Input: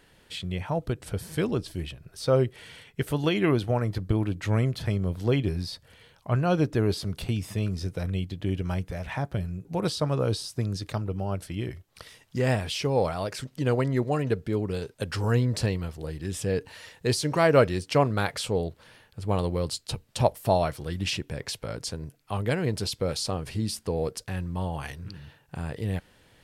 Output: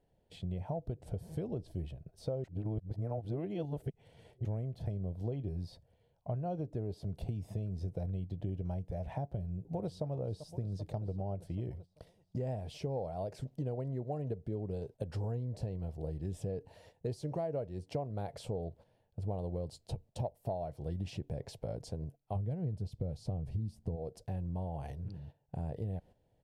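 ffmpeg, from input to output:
-filter_complex "[0:a]asplit=2[s0][s1];[s1]afade=t=in:st=9.36:d=0.01,afade=t=out:st=10.04:d=0.01,aecho=0:1:390|780|1170|1560|1950|2340|2730|3120:0.16788|0.117516|0.0822614|0.057583|0.0403081|0.0282157|0.019751|0.0138257[s2];[s0][s2]amix=inputs=2:normalize=0,asplit=3[s3][s4][s5];[s3]afade=t=out:st=22.35:d=0.02[s6];[s4]bass=f=250:g=12,treble=f=4000:g=-1,afade=t=in:st=22.35:d=0.02,afade=t=out:st=23.95:d=0.02[s7];[s5]afade=t=in:st=23.95:d=0.02[s8];[s6][s7][s8]amix=inputs=3:normalize=0,asplit=3[s9][s10][s11];[s9]atrim=end=2.442[s12];[s10]atrim=start=2.438:end=4.452,asetpts=PTS-STARTPTS,areverse[s13];[s11]atrim=start=4.448[s14];[s12][s13]acrossfade=d=0.004:c1=hsin:c2=hsin[s15];[s15][s14]acrossfade=d=0.004:c1=hsin:c2=hsin,agate=range=0.316:threshold=0.00501:ratio=16:detection=peak,firequalizer=gain_entry='entry(140,0);entry(270,-5);entry(690,2);entry(1200,-19);entry(3500,-17)':delay=0.05:min_phase=1,acompressor=threshold=0.0251:ratio=10,volume=0.841"

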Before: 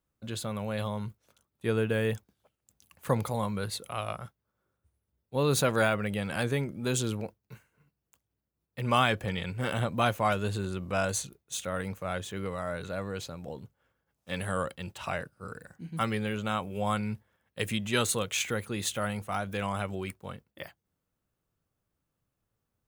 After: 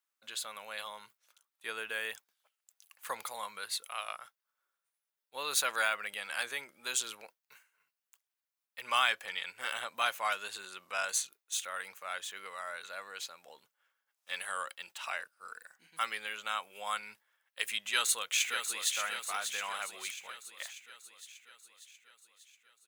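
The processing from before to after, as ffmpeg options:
-filter_complex "[0:a]asplit=2[s0][s1];[s1]afade=t=in:st=17.83:d=0.01,afade=t=out:st=18.96:d=0.01,aecho=0:1:590|1180|1770|2360|2950|3540|4130|4720:0.446684|0.26801|0.160806|0.0964837|0.0578902|0.0347341|0.0208405|0.0125043[s2];[s0][s2]amix=inputs=2:normalize=0,highpass=1300,volume=1.12"

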